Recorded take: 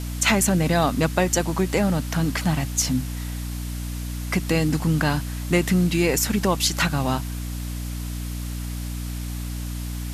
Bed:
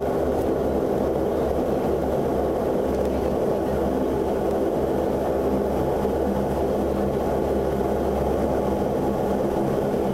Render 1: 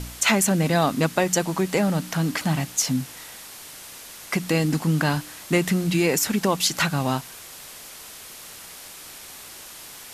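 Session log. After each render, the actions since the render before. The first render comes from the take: de-hum 60 Hz, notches 5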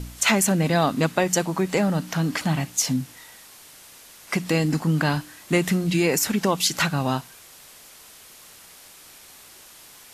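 noise print and reduce 6 dB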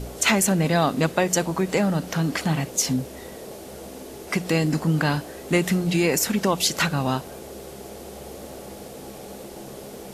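add bed -16.5 dB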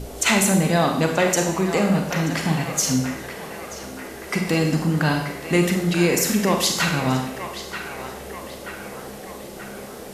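band-passed feedback delay 932 ms, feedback 64%, band-pass 1.5 kHz, level -8 dB; Schroeder reverb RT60 0.74 s, combs from 31 ms, DRR 3 dB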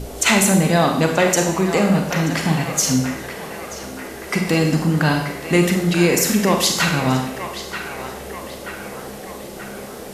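trim +3 dB

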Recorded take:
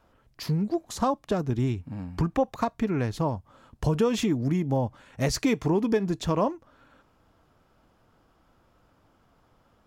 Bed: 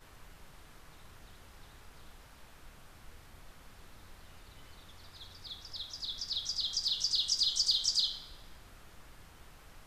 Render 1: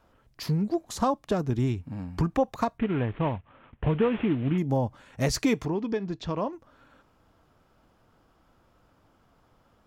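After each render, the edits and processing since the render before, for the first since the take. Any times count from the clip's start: 2.78–4.58 s: CVSD coder 16 kbps; 5.65–6.53 s: four-pole ladder low-pass 6.1 kHz, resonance 20%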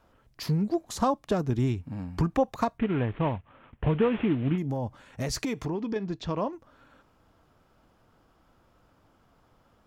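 4.55–5.96 s: compression, threshold -26 dBFS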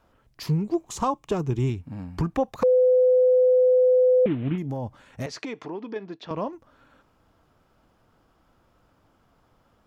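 0.46–1.70 s: rippled EQ curve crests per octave 0.71, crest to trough 7 dB; 2.63–4.26 s: bleep 506 Hz -14.5 dBFS; 5.26–6.31 s: band-pass 310–4100 Hz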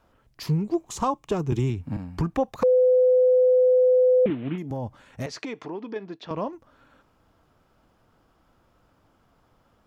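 1.52–1.97 s: three bands compressed up and down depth 100%; 4.30–4.71 s: Bessel high-pass 200 Hz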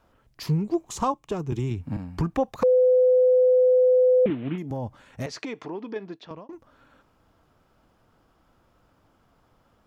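1.12–1.71 s: gain -3.5 dB; 6.09–6.49 s: fade out linear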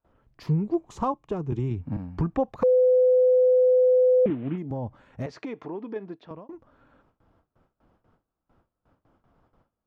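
low-pass 1.2 kHz 6 dB/octave; gate with hold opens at -54 dBFS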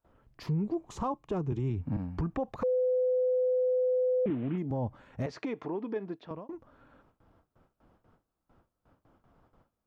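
peak limiter -24 dBFS, peak gain reduction 9.5 dB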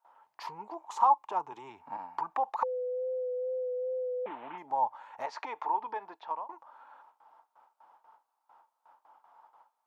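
wow and flutter 25 cents; resonant high-pass 890 Hz, resonance Q 8.7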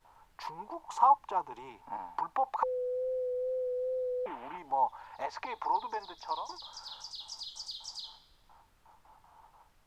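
add bed -13.5 dB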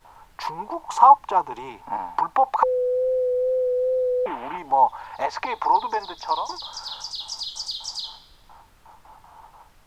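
trim +11.5 dB; peak limiter -2 dBFS, peak gain reduction 1 dB

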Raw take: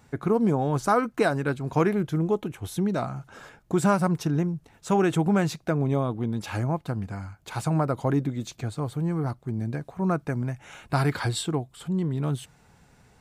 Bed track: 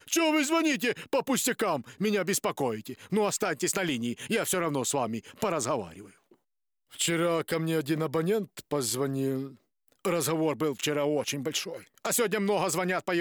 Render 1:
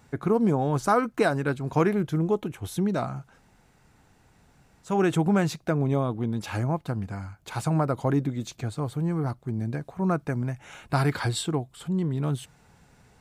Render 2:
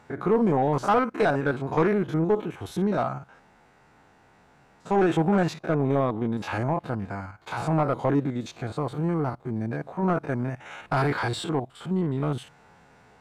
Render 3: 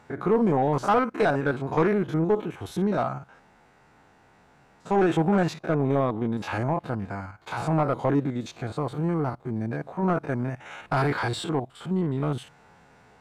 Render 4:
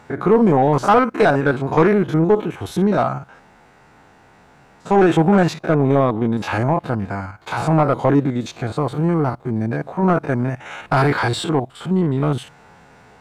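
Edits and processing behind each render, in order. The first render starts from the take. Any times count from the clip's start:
3.29–4.90 s: room tone, crossfade 0.24 s
spectrogram pixelated in time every 50 ms; overdrive pedal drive 17 dB, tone 1.2 kHz, clips at -10.5 dBFS
no audible change
trim +8 dB

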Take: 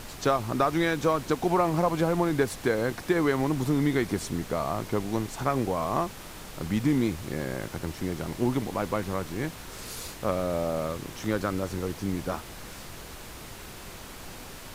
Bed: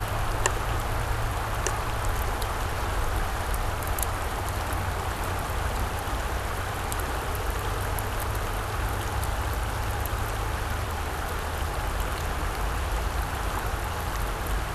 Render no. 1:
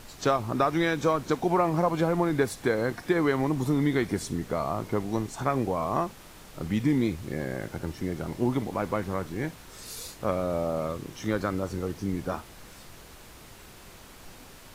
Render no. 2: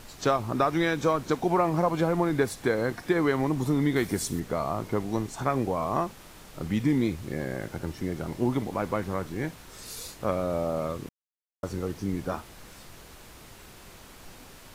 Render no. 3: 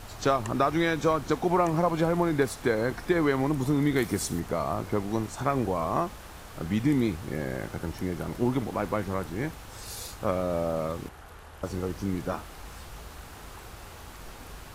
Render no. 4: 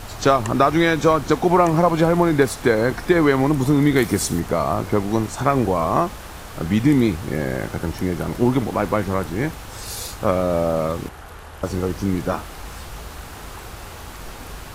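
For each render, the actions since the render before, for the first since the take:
noise print and reduce 6 dB
3.96–4.40 s: treble shelf 6.6 kHz +10.5 dB; 11.09–11.63 s: mute
add bed -17 dB
trim +8.5 dB

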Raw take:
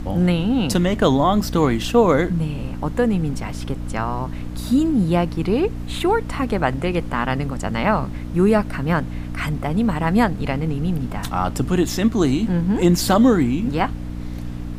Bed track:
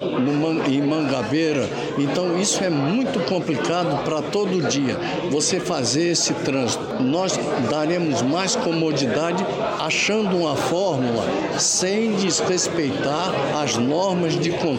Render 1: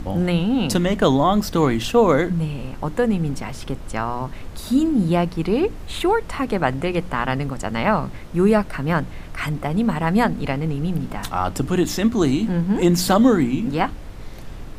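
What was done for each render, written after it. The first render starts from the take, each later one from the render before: de-hum 60 Hz, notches 5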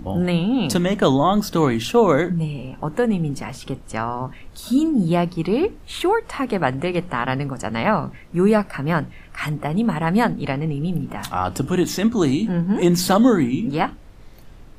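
noise print and reduce 9 dB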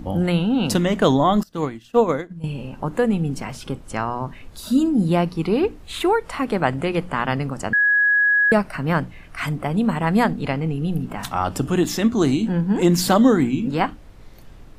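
1.43–2.44 s: upward expansion 2.5:1, over -27 dBFS; 7.73–8.52 s: bleep 1.67 kHz -13.5 dBFS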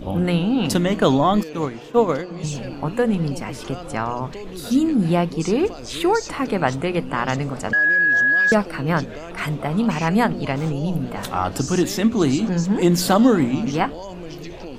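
add bed track -14 dB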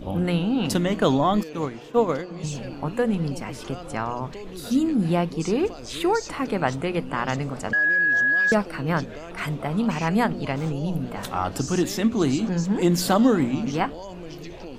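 trim -3.5 dB

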